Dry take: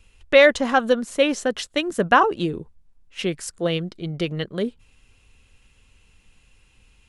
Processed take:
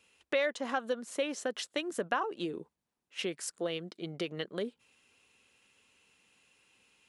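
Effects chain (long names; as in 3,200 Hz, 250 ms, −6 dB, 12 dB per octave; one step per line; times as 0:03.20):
high-pass filter 270 Hz 12 dB per octave
downward compressor 2.5 to 1, threshold −28 dBFS, peak gain reduction 12.5 dB
level −5 dB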